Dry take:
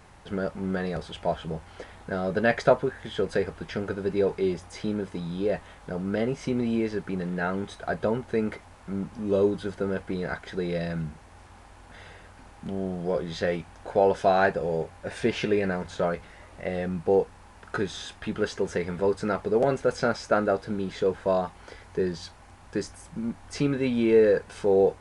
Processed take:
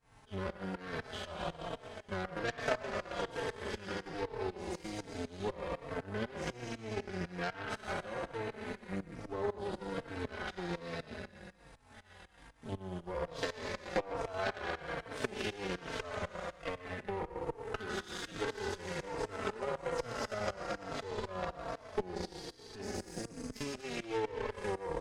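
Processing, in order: spectral trails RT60 1.96 s; thinning echo 0.12 s, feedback 69%, high-pass 800 Hz, level -4 dB; compressor 4:1, threshold -24 dBFS, peak gain reduction 11.5 dB; added harmonics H 3 -11 dB, 5 -26 dB, 6 -20 dB, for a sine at -13.5 dBFS; tremolo saw up 4 Hz, depth 85%; transient shaper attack +4 dB, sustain -5 dB; endless flanger 3.9 ms -1.2 Hz

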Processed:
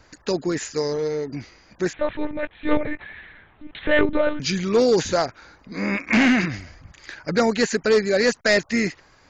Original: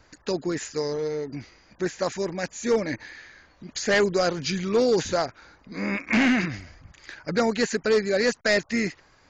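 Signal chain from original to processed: 1.93–4.4 monotone LPC vocoder at 8 kHz 300 Hz; gain +3.5 dB

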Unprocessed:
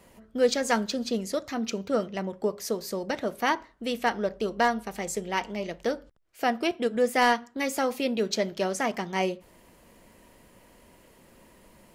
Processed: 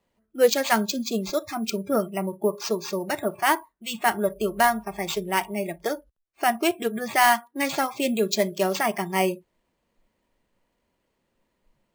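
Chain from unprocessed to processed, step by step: sample-and-hold 4×; spectral noise reduction 23 dB; gain +4.5 dB

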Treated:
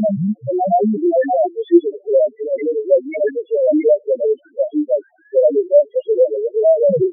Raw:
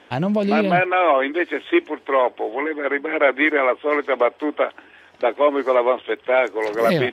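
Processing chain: slices in reverse order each 0.162 s, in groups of 3; loudest bins only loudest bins 1; bell 440 Hz +6.5 dB 1.3 oct; gain +7.5 dB

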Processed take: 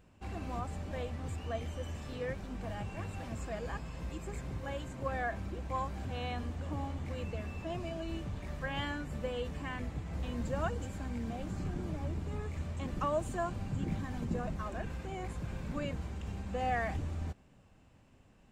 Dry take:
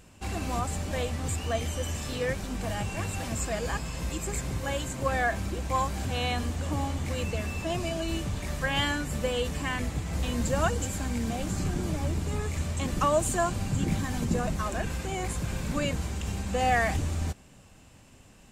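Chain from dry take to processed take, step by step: bell 11000 Hz -14 dB 2.3 oct; gain -7.5 dB

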